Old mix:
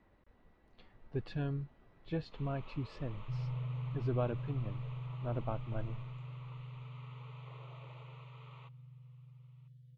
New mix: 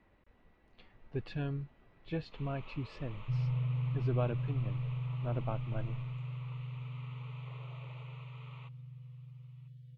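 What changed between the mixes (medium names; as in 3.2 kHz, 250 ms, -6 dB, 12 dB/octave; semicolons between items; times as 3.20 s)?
second sound +5.5 dB; master: add peaking EQ 2.5 kHz +5 dB 0.75 oct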